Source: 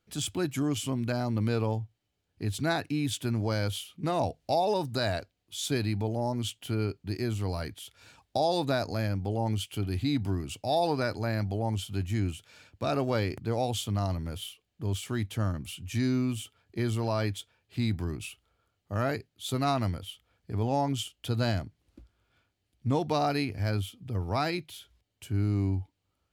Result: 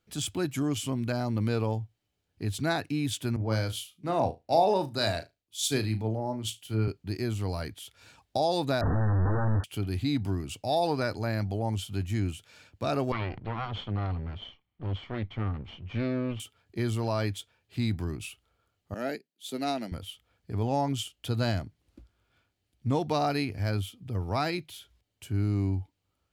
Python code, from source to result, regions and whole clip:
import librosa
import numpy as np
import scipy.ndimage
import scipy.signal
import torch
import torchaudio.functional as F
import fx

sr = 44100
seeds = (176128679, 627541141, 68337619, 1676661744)

y = fx.chain(x, sr, fx.room_flutter(wall_m=6.2, rt60_s=0.22),
    fx.band_widen(depth_pct=100), at=(3.36, 6.88))
y = fx.chain(y, sr, fx.clip_1bit(),
    fx.brickwall_lowpass(high_hz=1900.0),
    fx.low_shelf(hz=150.0, db=10.0), at=(8.81, 9.64))
y = fx.chain(y, sr, fx.lower_of_two(delay_ms=0.92),
    fx.lowpass(hz=3300.0, slope=24), at=(13.12, 16.4))
y = fx.chain(y, sr, fx.steep_highpass(hz=180.0, slope=36),
    fx.peak_eq(hz=1100.0, db=-15.0, octaves=0.42),
    fx.upward_expand(threshold_db=-52.0, expansion=1.5), at=(18.94, 19.92))